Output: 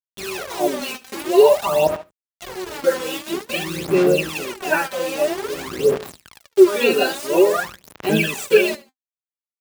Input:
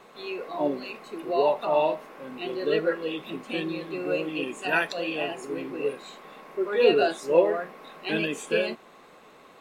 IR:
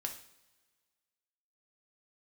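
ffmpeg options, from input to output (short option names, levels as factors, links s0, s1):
-filter_complex "[0:a]aecho=1:1:5.1:0.58,asettb=1/sr,asplit=3[s0][s1][s2];[s0]atrim=end=1.874[s3];[s1]atrim=start=1.87:end=2.84,asetpts=PTS-STARTPTS,afade=t=in:d=0.004:c=qsin,afade=t=out:st=0.966:d=0.004:c=qsin,aeval=exprs='(tanh(79.4*val(0)+0.3)-tanh(0.3))/79.4':c=same[s4];[s2]atrim=start=2.836[s5];[s3][s4]acrossfade=d=0.004:c1=hsin:c2=qsin[s6];[s6][s5]acrossfade=d=0.004:c1=qsin:c2=hsin,asettb=1/sr,asplit=3[s7][s8][s9];[s7]atrim=end=4.374[s10];[s8]atrim=start=4.37:end=5.95,asetpts=PTS-STARTPTS,afade=t=in:d=0.004:c=qsin,afade=t=out:st=1.576:d=0.004:c=qsin,lowpass=1600[s11];[s9]atrim=start=5.946[s12];[s10][s11]acrossfade=d=0.004:c1=hsin:c2=qsin[s13];[s13][s12]acrossfade=d=0.004:c1=qsin:c2=hsin,acrusher=bits=5:mix=0:aa=0.000001,highpass=60,aecho=1:1:72|144:0.126|0.0352,aphaser=in_gain=1:out_gain=1:delay=3.9:decay=0.73:speed=0.5:type=sinusoidal,volume=1.5"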